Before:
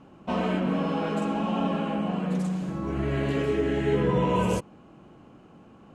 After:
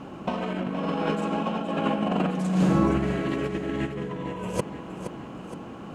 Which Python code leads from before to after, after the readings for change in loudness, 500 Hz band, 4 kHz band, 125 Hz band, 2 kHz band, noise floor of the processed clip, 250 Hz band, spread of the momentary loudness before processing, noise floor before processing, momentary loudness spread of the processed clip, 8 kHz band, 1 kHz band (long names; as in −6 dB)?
−0.5 dB, −1.5 dB, +0.5 dB, 0.0 dB, +0.5 dB, −40 dBFS, +1.0 dB, 6 LU, −52 dBFS, 15 LU, +1.5 dB, +0.5 dB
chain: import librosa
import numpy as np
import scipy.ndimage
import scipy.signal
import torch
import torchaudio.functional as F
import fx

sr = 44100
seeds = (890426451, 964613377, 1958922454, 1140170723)

y = fx.low_shelf(x, sr, hz=120.0, db=-5.5)
y = fx.over_compress(y, sr, threshold_db=-32.0, ratio=-0.5)
y = fx.echo_feedback(y, sr, ms=469, feedback_pct=53, wet_db=-10.5)
y = y * 10.0 ** (6.5 / 20.0)